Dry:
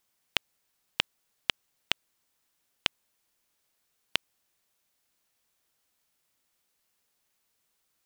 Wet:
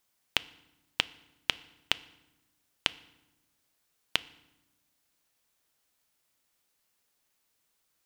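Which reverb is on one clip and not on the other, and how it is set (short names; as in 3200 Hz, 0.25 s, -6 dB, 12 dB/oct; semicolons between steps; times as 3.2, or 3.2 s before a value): FDN reverb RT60 0.95 s, low-frequency decay 1.6×, high-frequency decay 0.8×, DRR 16.5 dB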